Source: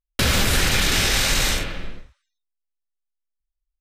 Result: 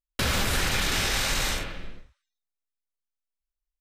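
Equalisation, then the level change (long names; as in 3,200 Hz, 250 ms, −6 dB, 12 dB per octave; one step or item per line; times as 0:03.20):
dynamic equaliser 980 Hz, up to +4 dB, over −36 dBFS, Q 0.98
−7.0 dB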